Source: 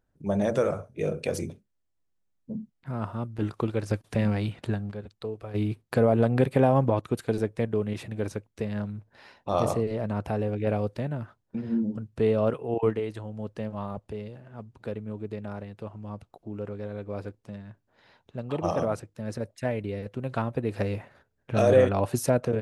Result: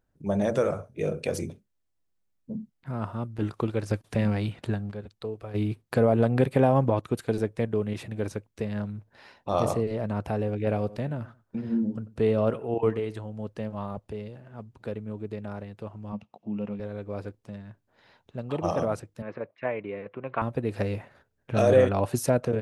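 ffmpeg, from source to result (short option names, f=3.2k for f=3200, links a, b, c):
-filter_complex "[0:a]asettb=1/sr,asplit=3[a][b][c];[a]atrim=end=10.664[d];[b]atrim=start=10.66:end=13.24,asetpts=PTS-STARTPTS,afade=t=in:d=0.004:c=qsin,afade=t=out:st=2.576:d=0.004:c=qsin,asplit=2[e][f];[f]adelay=92,lowpass=f=1.9k:p=1,volume=-17.5dB,asplit=2[g][h];[h]adelay=92,lowpass=f=1.9k:p=1,volume=0.25[i];[e][g][i]amix=inputs=3:normalize=0,atrim=end_sample=113778[j];[c]atrim=start=13.236[k];[d][j]acrossfade=d=0.004:c1=hsin:c2=qsin[l];[l][k]acrossfade=d=0.004:c1=qsin:c2=hsin,asettb=1/sr,asplit=3[m][n][o];[m]atrim=end=16.124[p];[n]atrim=start=16.12:end=16.8,asetpts=PTS-STARTPTS,afade=t=in:d=0.004:c=qsin,afade=t=out:st=0.676:d=0.004:c=qsin,highpass=130,equalizer=f=210:t=q:w=4:g=10,equalizer=f=370:t=q:w=4:g=-7,equalizer=f=900:t=q:w=4:g=3,equalizer=f=1.5k:t=q:w=4:g=-7,equalizer=f=2.7k:t=q:w=4:g=9,equalizer=f=4.3k:t=q:w=4:g=-5,lowpass=f=6k:w=0.5412,lowpass=f=6k:w=1.3066[q];[o]atrim=start=16.796[r];[p][q]acrossfade=d=0.004:c1=hsin:c2=qsin[s];[s][r]acrossfade=d=0.004:c1=qsin:c2=hsin,asettb=1/sr,asplit=3[t][u][v];[t]atrim=end=19.224[w];[u]atrim=start=19.22:end=20.42,asetpts=PTS-STARTPTS,afade=t=in:d=0.004:c=qsin,afade=t=out:st=1.196:d=0.004:c=qsin,highpass=220,equalizer=f=240:t=q:w=4:g=-6,equalizer=f=1.1k:t=q:w=4:g=8,equalizer=f=2.3k:t=q:w=4:g=5,lowpass=f=2.7k:w=0.5412,lowpass=f=2.7k:w=1.3066[x];[v]atrim=start=20.416[y];[w][x]acrossfade=d=0.004:c1=hsin:c2=qsin[z];[z][y]acrossfade=d=0.004:c1=qsin:c2=hsin"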